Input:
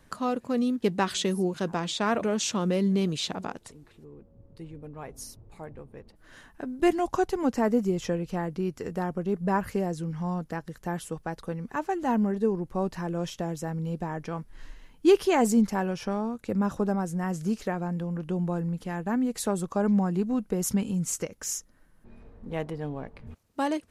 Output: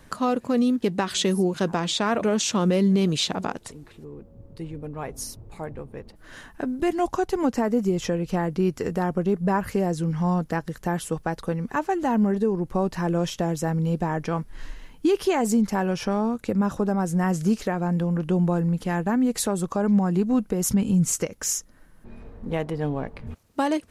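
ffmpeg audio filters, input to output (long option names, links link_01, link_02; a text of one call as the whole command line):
ffmpeg -i in.wav -filter_complex "[0:a]asettb=1/sr,asplit=3[link_01][link_02][link_03];[link_01]atrim=end=20.684[link_04];[link_02]atrim=start=20.68:end=21.12,asetpts=PTS-STARTPTS,afade=type=in:duration=0.004:curve=qsin,afade=type=out:start_time=0.436:duration=0.004:curve=qsin,lowshelf=frequency=250:gain=7[link_05];[link_03]atrim=start=21.116[link_06];[link_04][link_05]acrossfade=duration=0.004:curve1=hsin:curve2=qsin[link_07];[link_07][link_06]acrossfade=duration=0.004:curve1=qsin:curve2=hsin,alimiter=limit=-21dB:level=0:latency=1:release=264,volume=7.5dB" out.wav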